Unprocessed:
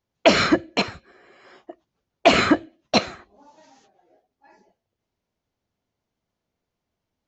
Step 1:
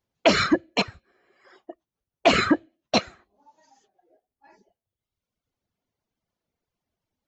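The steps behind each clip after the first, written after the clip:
reverb reduction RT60 1.4 s
in parallel at +2 dB: brickwall limiter −10 dBFS, peak gain reduction 6.5 dB
on the sum: level −7.5 dB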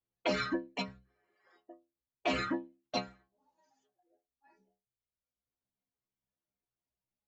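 high-shelf EQ 5,800 Hz −7.5 dB
stiff-string resonator 62 Hz, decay 0.38 s, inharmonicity 0.008
level −4 dB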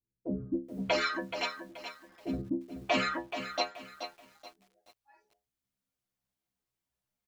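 multiband delay without the direct sound lows, highs 640 ms, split 400 Hz
feedback echo at a low word length 428 ms, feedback 35%, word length 10 bits, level −9 dB
level +4.5 dB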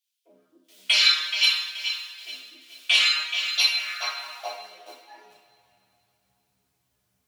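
high-pass filter sweep 3,200 Hz → 99 Hz, 0:03.56–0:05.67
sine wavefolder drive 8 dB, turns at −10.5 dBFS
coupled-rooms reverb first 0.55 s, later 3.1 s, from −18 dB, DRR −5 dB
level −4 dB

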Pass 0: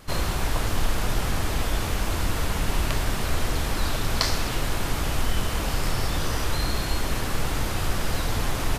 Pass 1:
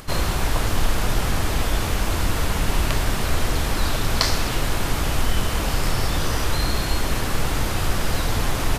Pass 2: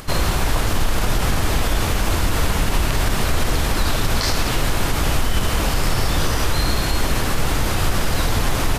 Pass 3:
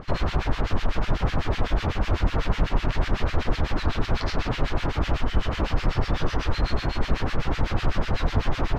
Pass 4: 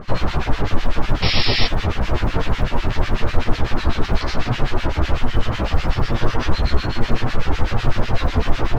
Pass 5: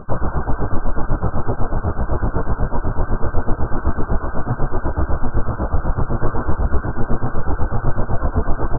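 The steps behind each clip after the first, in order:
upward compression, threshold −40 dBFS; level +3.5 dB
brickwall limiter −12.5 dBFS, peak gain reduction 11 dB; level +4 dB
two-band tremolo in antiphase 8 Hz, depth 100%, crossover 1,400 Hz; high-frequency loss of the air 210 metres
sound drawn into the spectrogram noise, 0:01.22–0:01.67, 1,800–5,600 Hz −26 dBFS; floating-point word with a short mantissa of 6 bits; multi-voice chorus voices 4, 0.58 Hz, delay 13 ms, depth 4.7 ms; level +7.5 dB
linear-phase brick-wall low-pass 1,600 Hz; far-end echo of a speakerphone 200 ms, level −14 dB; highs frequency-modulated by the lows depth 0.18 ms

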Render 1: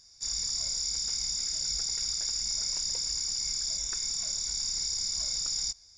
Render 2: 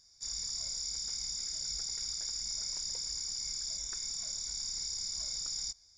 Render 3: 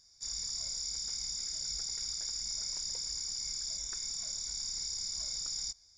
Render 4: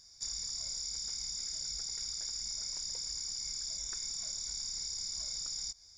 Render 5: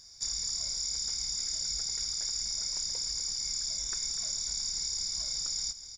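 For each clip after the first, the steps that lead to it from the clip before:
notch filter 2,700 Hz, Q 8.9; level −6 dB
no processing that can be heard
downward compressor, threshold −41 dBFS, peak gain reduction 7.5 dB; level +5 dB
single-tap delay 246 ms −12.5 dB; level +5 dB

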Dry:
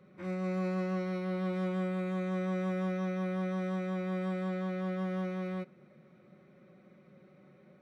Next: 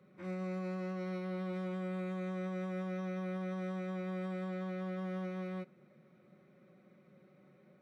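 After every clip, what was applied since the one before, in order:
brickwall limiter −28.5 dBFS, peak gain reduction 4 dB
high-pass filter 82 Hz
level −4 dB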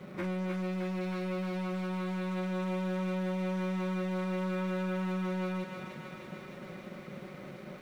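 leveller curve on the samples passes 3
downward compressor, threshold −40 dBFS, peak gain reduction 7 dB
on a send: feedback echo with a high-pass in the loop 308 ms, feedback 78%, high-pass 800 Hz, level −4 dB
on the sum: level +7 dB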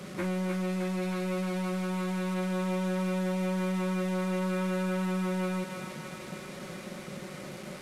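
linear delta modulator 64 kbit/s, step −43.5 dBFS
level +3 dB

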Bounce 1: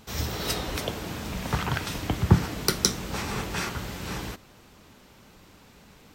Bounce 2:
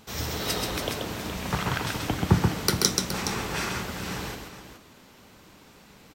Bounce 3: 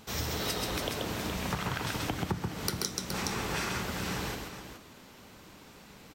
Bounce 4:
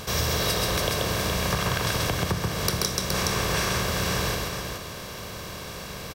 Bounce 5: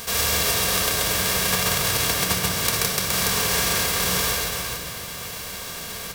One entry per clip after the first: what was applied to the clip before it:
low-shelf EQ 87 Hz −7.5 dB; on a send: multi-tap delay 132/419 ms −4/−10.5 dB
downward compressor 8 to 1, threshold −29 dBFS, peak gain reduction 16 dB
compressor on every frequency bin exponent 0.6; comb filter 1.8 ms, depth 52%; level +3.5 dB
spectral envelope flattened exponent 0.3; rectangular room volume 3,000 cubic metres, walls mixed, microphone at 1.7 metres; level +1.5 dB

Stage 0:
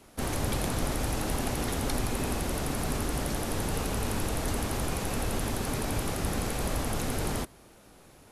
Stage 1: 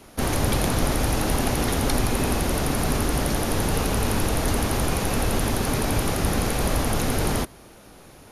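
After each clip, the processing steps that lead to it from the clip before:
notch filter 7,800 Hz, Q 6.4
level +7.5 dB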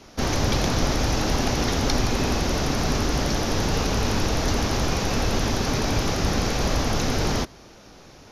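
high shelf with overshoot 7,300 Hz −8.5 dB, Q 3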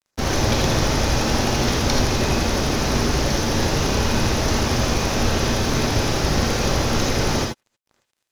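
dead-zone distortion −38.5 dBFS
reverb whose tail is shaped and stops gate 100 ms rising, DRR 0.5 dB
level +2 dB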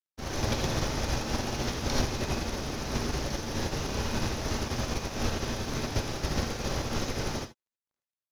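expander for the loud parts 2.5 to 1, over −30 dBFS
level −6 dB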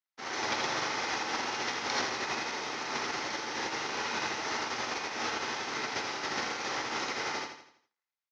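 loudspeaker in its box 430–6,200 Hz, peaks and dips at 590 Hz −8 dB, 850 Hz +4 dB, 1,300 Hz +4 dB, 2,000 Hz +7 dB
repeating echo 83 ms, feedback 43%, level −8 dB

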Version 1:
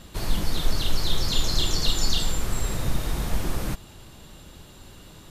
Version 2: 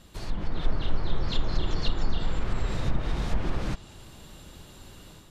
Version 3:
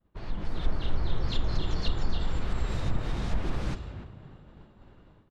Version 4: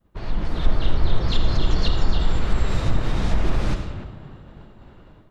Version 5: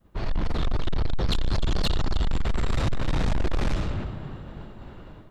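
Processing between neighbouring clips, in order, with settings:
treble cut that deepens with the level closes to 1,600 Hz, closed at −15.5 dBFS; automatic gain control gain up to 6.5 dB; level −7.5 dB
downward expander −42 dBFS; echo with shifted repeats 293 ms, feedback 35%, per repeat +48 Hz, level −12 dB; low-pass that shuts in the quiet parts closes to 1,400 Hz, open at −20.5 dBFS; level −2.5 dB
convolution reverb RT60 0.55 s, pre-delay 40 ms, DRR 7.5 dB; level +7.5 dB
soft clipping −23 dBFS, distortion −6 dB; level +4 dB

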